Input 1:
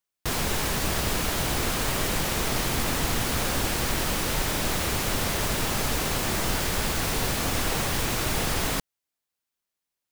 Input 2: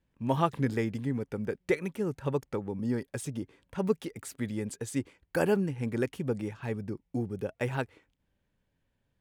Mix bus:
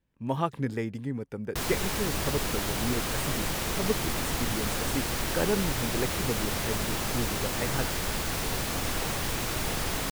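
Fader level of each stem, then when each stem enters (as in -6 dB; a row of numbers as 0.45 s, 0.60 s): -4.0 dB, -1.5 dB; 1.30 s, 0.00 s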